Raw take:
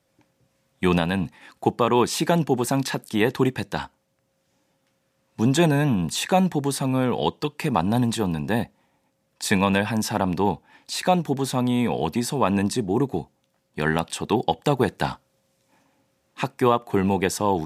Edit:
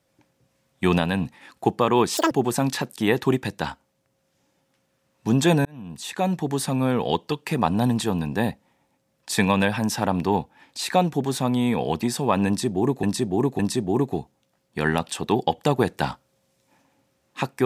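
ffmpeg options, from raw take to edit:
ffmpeg -i in.wav -filter_complex "[0:a]asplit=6[link_01][link_02][link_03][link_04][link_05][link_06];[link_01]atrim=end=2.174[link_07];[link_02]atrim=start=2.17:end=2.44,asetpts=PTS-STARTPTS,asetrate=84231,aresample=44100,atrim=end_sample=6234,asetpts=PTS-STARTPTS[link_08];[link_03]atrim=start=2.436:end=5.78,asetpts=PTS-STARTPTS,afade=type=out:start_time=3.34:duration=0.004:curve=hsin[link_09];[link_04]atrim=start=5.78:end=13.162,asetpts=PTS-STARTPTS,afade=type=in:duration=0.99[link_10];[link_05]atrim=start=12.598:end=13.162[link_11];[link_06]atrim=start=12.598[link_12];[link_07][link_08]acrossfade=duration=0.004:curve1=hsin:curve2=hsin[link_13];[link_09][link_10]concat=n=2:v=0:a=1[link_14];[link_13][link_14]acrossfade=duration=0.004:curve1=hsin:curve2=hsin[link_15];[link_15][link_11]acrossfade=duration=0.004:curve1=hsin:curve2=hsin[link_16];[link_16][link_12]acrossfade=duration=0.004:curve1=hsin:curve2=hsin" out.wav

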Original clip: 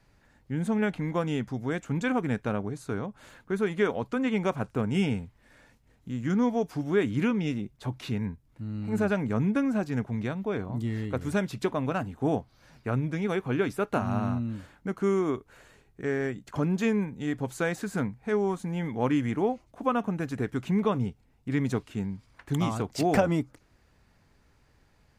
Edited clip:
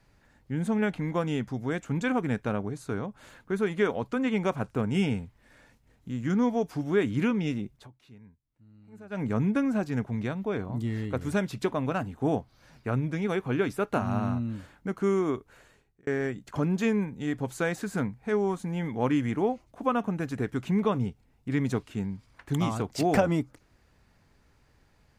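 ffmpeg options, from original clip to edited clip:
ffmpeg -i in.wav -filter_complex "[0:a]asplit=4[link_01][link_02][link_03][link_04];[link_01]atrim=end=7.88,asetpts=PTS-STARTPTS,afade=type=out:start_time=7.76:duration=0.12:silence=0.0891251[link_05];[link_02]atrim=start=7.88:end=9.1,asetpts=PTS-STARTPTS,volume=-21dB[link_06];[link_03]atrim=start=9.1:end=16.07,asetpts=PTS-STARTPTS,afade=type=in:duration=0.12:silence=0.0891251,afade=type=out:start_time=6.18:duration=0.79:curve=qsin[link_07];[link_04]atrim=start=16.07,asetpts=PTS-STARTPTS,afade=type=in:duration=0.004:curve=hsin[link_08];[link_05][link_06][link_07][link_08]concat=n=4:v=0:a=1" out.wav

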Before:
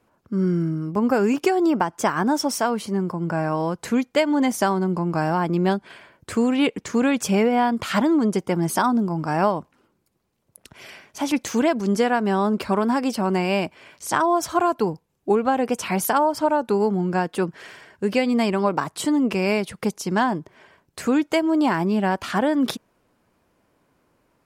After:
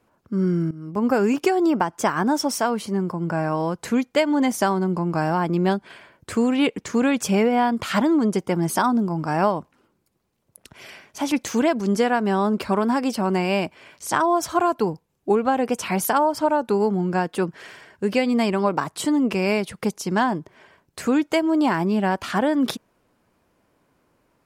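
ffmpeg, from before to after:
ffmpeg -i in.wav -filter_complex "[0:a]asplit=2[link_01][link_02];[link_01]atrim=end=0.71,asetpts=PTS-STARTPTS,afade=type=out:start_time=0.706:duration=0.004:curve=hsin:silence=0.149624[link_03];[link_02]atrim=start=0.71,asetpts=PTS-STARTPTS,afade=type=in:duration=0.36:silence=0.149624[link_04];[link_03][link_04]concat=n=2:v=0:a=1" out.wav

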